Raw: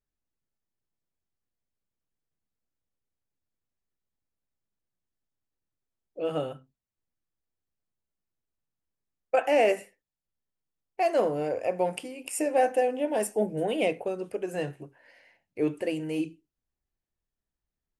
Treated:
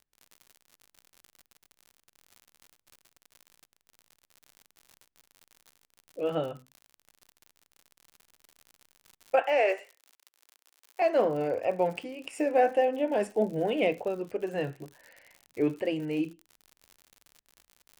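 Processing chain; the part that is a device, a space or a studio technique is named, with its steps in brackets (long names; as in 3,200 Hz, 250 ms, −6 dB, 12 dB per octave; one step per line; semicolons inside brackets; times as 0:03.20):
lo-fi chain (low-pass filter 3,500 Hz 12 dB per octave; tape wow and flutter; surface crackle 82 per second −42 dBFS)
high-shelf EQ 5,300 Hz +5 dB
0:09.42–0:11.02: Bessel high-pass filter 560 Hz, order 8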